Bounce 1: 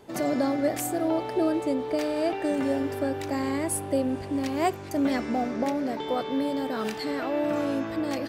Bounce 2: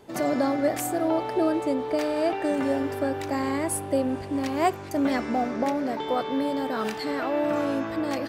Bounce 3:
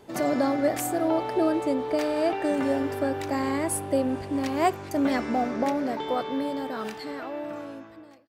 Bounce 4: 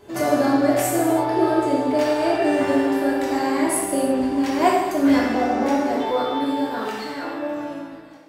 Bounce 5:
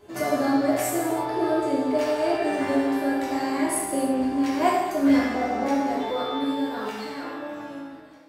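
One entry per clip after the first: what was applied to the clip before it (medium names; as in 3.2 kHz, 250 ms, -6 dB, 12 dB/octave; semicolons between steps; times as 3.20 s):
dynamic bell 1.1 kHz, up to +4 dB, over -38 dBFS, Q 0.8
fade out at the end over 2.48 s
gated-style reverb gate 370 ms falling, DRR -5.5 dB
chord resonator C#2 major, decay 0.23 s; trim +5.5 dB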